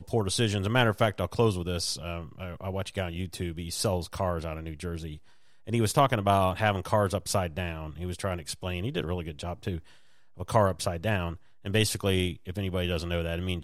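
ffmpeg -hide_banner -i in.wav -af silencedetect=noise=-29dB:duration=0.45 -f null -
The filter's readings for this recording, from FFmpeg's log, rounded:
silence_start: 5.09
silence_end: 5.69 | silence_duration: 0.59
silence_start: 9.77
silence_end: 10.40 | silence_duration: 0.63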